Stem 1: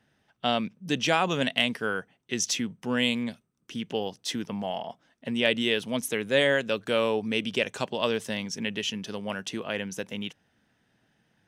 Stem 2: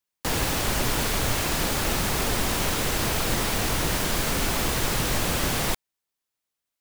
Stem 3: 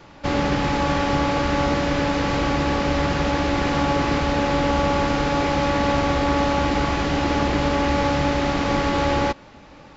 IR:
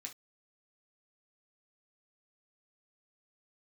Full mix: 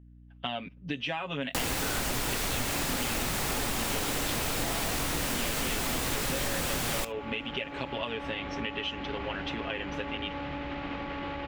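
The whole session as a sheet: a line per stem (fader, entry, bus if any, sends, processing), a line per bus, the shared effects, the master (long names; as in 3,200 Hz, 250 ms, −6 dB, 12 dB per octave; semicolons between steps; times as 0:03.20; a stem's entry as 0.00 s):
−4.0 dB, 0.00 s, bus A, send −16.5 dB, noise gate with hold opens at −55 dBFS; comb filter 7.3 ms, depth 96%; mains hum 60 Hz, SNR 22 dB
−1.0 dB, 1.30 s, no bus, send −4.5 dB, no processing
−11.5 dB, 2.30 s, bus A, send −9 dB, brickwall limiter −17.5 dBFS, peak gain reduction 9.5 dB
bus A: 0.0 dB, low-pass with resonance 2,900 Hz, resonance Q 1.7; downward compressor, threshold −29 dBFS, peak gain reduction 12.5 dB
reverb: on, pre-delay 3 ms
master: downward compressor 4 to 1, threshold −28 dBFS, peak gain reduction 7.5 dB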